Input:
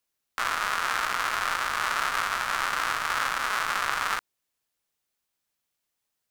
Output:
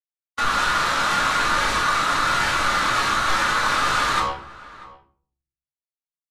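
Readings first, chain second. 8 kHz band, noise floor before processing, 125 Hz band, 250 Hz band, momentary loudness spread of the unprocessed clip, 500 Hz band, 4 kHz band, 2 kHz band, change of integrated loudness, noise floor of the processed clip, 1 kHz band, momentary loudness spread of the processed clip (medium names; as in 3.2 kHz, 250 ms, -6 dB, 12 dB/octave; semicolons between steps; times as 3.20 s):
+6.5 dB, -82 dBFS, +16.0 dB, +15.0 dB, 3 LU, +9.5 dB, +8.0 dB, +6.0 dB, +7.0 dB, under -85 dBFS, +7.5 dB, 4 LU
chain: spectral noise reduction 18 dB; de-hum 69.01 Hz, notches 18; gate -50 dBFS, range -13 dB; peaking EQ 11 kHz +9.5 dB 2 oct; peak limiter -20 dBFS, peak gain reduction 13.5 dB; waveshaping leveller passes 5; level rider gain up to 11.5 dB; hard clipper -23 dBFS, distortion -8 dB; distance through air 75 m; echo from a far wall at 110 m, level -19 dB; simulated room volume 440 m³, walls furnished, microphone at 2.4 m; resampled via 32 kHz; trim +1 dB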